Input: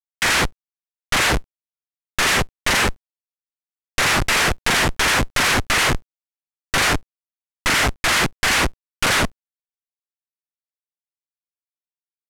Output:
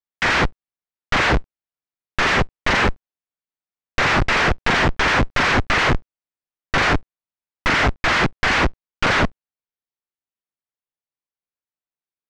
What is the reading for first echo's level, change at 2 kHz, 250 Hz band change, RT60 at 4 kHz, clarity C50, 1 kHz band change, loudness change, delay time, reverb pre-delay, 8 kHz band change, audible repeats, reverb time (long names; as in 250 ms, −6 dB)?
no echo audible, +0.5 dB, +2.5 dB, no reverb audible, no reverb audible, +2.0 dB, −0.5 dB, no echo audible, no reverb audible, −12.0 dB, no echo audible, no reverb audible